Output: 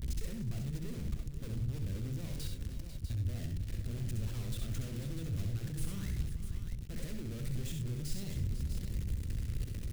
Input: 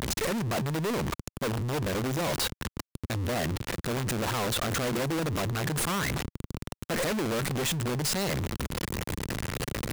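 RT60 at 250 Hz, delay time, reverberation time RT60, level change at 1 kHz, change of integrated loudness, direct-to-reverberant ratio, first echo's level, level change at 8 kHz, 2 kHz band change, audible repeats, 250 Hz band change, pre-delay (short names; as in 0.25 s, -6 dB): none, 67 ms, none, -27.0 dB, -9.5 dB, none, -5.5 dB, -15.5 dB, -21.0 dB, 5, -11.0 dB, none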